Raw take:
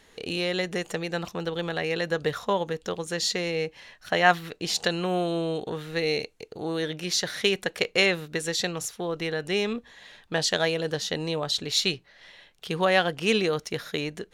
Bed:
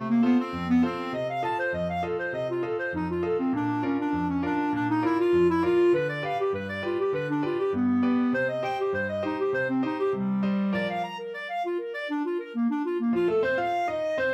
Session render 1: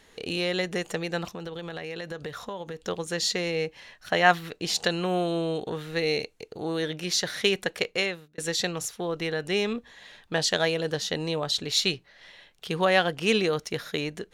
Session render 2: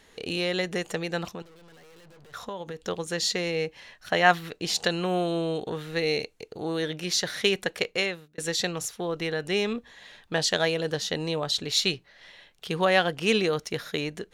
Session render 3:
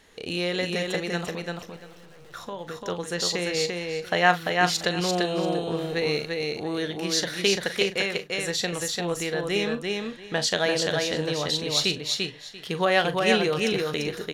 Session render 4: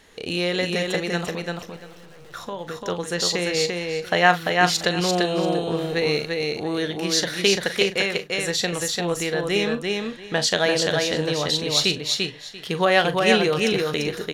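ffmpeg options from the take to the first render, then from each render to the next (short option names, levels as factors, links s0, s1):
-filter_complex "[0:a]asettb=1/sr,asplit=3[s0][s1][s2];[s0]atrim=end=1.264[s3];[s1]atrim=start=1.26:end=2.82,asetpts=PTS-STARTPTS,afade=t=in:d=0.004:c=qsin,afade=t=out:st=1.556:d=0.004:c=qsin,acompressor=threshold=0.0224:ratio=4:attack=3.2:release=140:knee=1:detection=peak[s4];[s2]atrim=start=2.816[s5];[s3][s4]acrossfade=d=0.004:c1=hsin:c2=qsin[s6];[s6][s5]acrossfade=d=0.004:c1=qsin:c2=hsin,asplit=2[s7][s8];[s7]atrim=end=8.38,asetpts=PTS-STARTPTS,afade=t=out:st=7.7:d=0.68[s9];[s8]atrim=start=8.38,asetpts=PTS-STARTPTS,afade=t=in:d=0.004:c=hsin[s10];[s9][s10]concat=n=2:v=0:a=1"
-filter_complex "[0:a]asettb=1/sr,asplit=3[s0][s1][s2];[s0]atrim=end=1.424[s3];[s1]atrim=start=1.42:end=2.34,asetpts=PTS-STARTPTS,afade=t=in:d=0.004:c=qsin,afade=t=out:st=0.916:d=0.004:c=qsin,aeval=exprs='(tanh(398*val(0)+0.55)-tanh(0.55))/398':c=same[s4];[s2]atrim=start=2.336[s5];[s3][s4]acrossfade=d=0.004:c1=hsin:c2=qsin[s6];[s6][s5]acrossfade=d=0.004:c1=qsin:c2=hsin"
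-filter_complex "[0:a]asplit=2[s0][s1];[s1]adelay=40,volume=0.251[s2];[s0][s2]amix=inputs=2:normalize=0,aecho=1:1:343|686|1029:0.708|0.127|0.0229"
-af "volume=1.5,alimiter=limit=0.794:level=0:latency=1"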